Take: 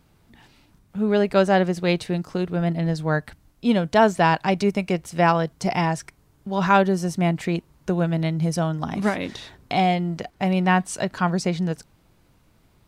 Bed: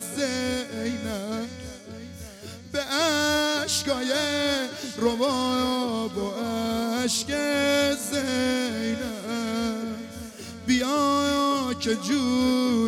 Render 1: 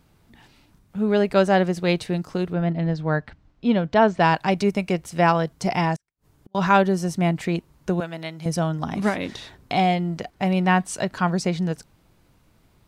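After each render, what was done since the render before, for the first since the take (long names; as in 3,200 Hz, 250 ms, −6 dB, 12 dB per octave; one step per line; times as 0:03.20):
0:02.53–0:04.20: high-frequency loss of the air 160 metres
0:05.96–0:06.55: gate with flip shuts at −36 dBFS, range −39 dB
0:08.00–0:08.46: high-pass filter 840 Hz 6 dB per octave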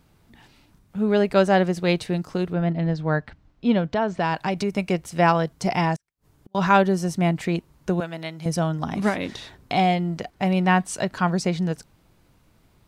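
0:03.88–0:04.78: downward compressor 3 to 1, threshold −20 dBFS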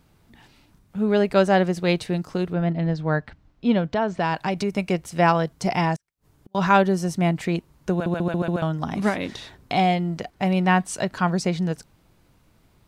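0:07.92: stutter in place 0.14 s, 5 plays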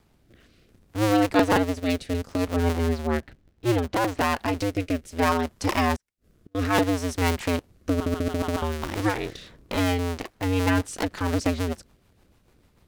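sub-harmonics by changed cycles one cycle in 2, inverted
rotating-speaker cabinet horn 0.65 Hz, later 6.7 Hz, at 0:10.09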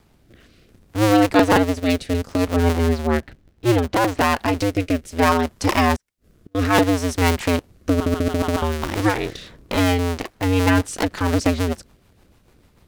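level +5.5 dB
brickwall limiter −2 dBFS, peak gain reduction 1 dB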